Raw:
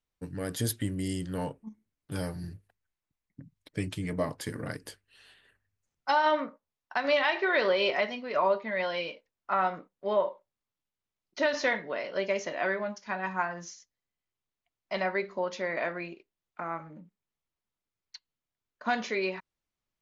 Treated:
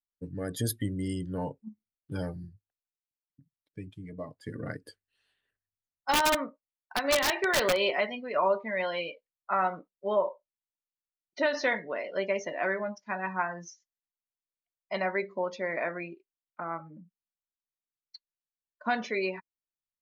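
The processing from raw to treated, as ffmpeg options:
-filter_complex "[0:a]asplit=3[s0][s1][s2];[s0]afade=t=out:st=6.11:d=0.02[s3];[s1]aeval=exprs='(mod(7.5*val(0)+1,2)-1)/7.5':c=same,afade=t=in:st=6.11:d=0.02,afade=t=out:st=7.78:d=0.02[s4];[s2]afade=t=in:st=7.78:d=0.02[s5];[s3][s4][s5]amix=inputs=3:normalize=0,asplit=3[s6][s7][s8];[s6]atrim=end=2.5,asetpts=PTS-STARTPTS,afade=t=out:st=2.26:d=0.24:c=qsin:silence=0.354813[s9];[s7]atrim=start=2.5:end=4.39,asetpts=PTS-STARTPTS,volume=0.355[s10];[s8]atrim=start=4.39,asetpts=PTS-STARTPTS,afade=t=in:d=0.24:c=qsin:silence=0.354813[s11];[s9][s10][s11]concat=n=3:v=0:a=1,afftdn=nr=18:nf=-41"

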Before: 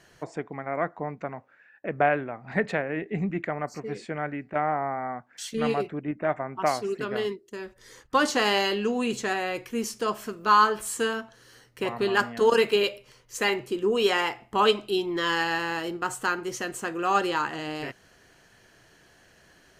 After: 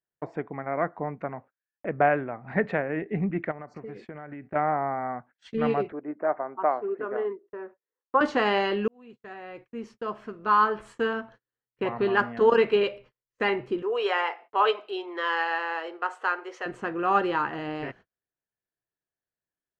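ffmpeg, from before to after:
-filter_complex "[0:a]asettb=1/sr,asplit=3[s0][s1][s2];[s0]atrim=end=3.514[s3];[s1]atrim=start=3.51:end=4.44,asetpts=PTS-STARTPTS,afade=t=in:d=0.004:c=qsin,afade=t=out:st=0.926:d=0.004:c=qsin,acompressor=threshold=0.0178:ratio=16:attack=3.2:release=140:knee=1:detection=peak[s4];[s2]atrim=start=4.436[s5];[s3][s4]acrossfade=d=0.004:c1=hsin:c2=qsin[s6];[s6][s5]acrossfade=d=0.004:c1=qsin:c2=hsin,asettb=1/sr,asplit=3[s7][s8][s9];[s7]atrim=end=5.924[s10];[s8]atrim=start=5.92:end=8.21,asetpts=PTS-STARTPTS,afade=t=in:d=0.004:c=qsin,afade=t=out:st=2.286:d=0.004:c=qsin,asuperpass=centerf=710:order=4:qfactor=0.6[s11];[s9]atrim=start=8.206[s12];[s10][s11]acrossfade=d=0.004:c1=hsin:c2=qsin[s13];[s13][s12]acrossfade=d=0.004:c1=qsin:c2=hsin,asettb=1/sr,asplit=3[s14][s15][s16];[s14]atrim=end=13.824[s17];[s15]atrim=start=13.82:end=16.66,asetpts=PTS-STARTPTS,afade=t=in:d=0.004:c=qsin,afade=t=out:st=2.836:d=0.004:c=qsin,highpass=f=460:w=0.5412,highpass=f=460:w=1.3066[s18];[s16]atrim=start=16.656[s19];[s17][s18]acrossfade=d=0.004:c1=hsin:c2=qsin[s20];[s20][s19]acrossfade=d=0.004:c1=qsin:c2=hsin,asplit=2[s21][s22];[s21]atrim=end=8.88,asetpts=PTS-STARTPTS,afade=t=out:st=8.876:d=0.004:c=hsin[s23];[s22]atrim=start=8.88,asetpts=PTS-STARTPTS,afade=t=in:d=2.31[s24];[s23][s24]concat=n=2:v=0:a=1,lowpass=2100,agate=range=0.01:threshold=0.00398:ratio=16:detection=peak,volume=1.12"

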